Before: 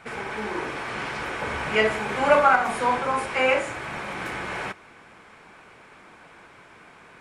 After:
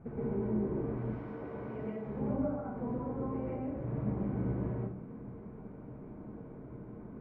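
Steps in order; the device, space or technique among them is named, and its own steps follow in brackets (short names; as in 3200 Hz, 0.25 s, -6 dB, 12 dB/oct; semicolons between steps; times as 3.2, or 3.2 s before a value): 0.97–2.07 RIAA curve recording; television next door (compressor 4:1, threshold -36 dBFS, peak gain reduction 19.5 dB; LPF 260 Hz 12 dB/oct; reverb RT60 0.55 s, pre-delay 0.116 s, DRR -5 dB); gain +6.5 dB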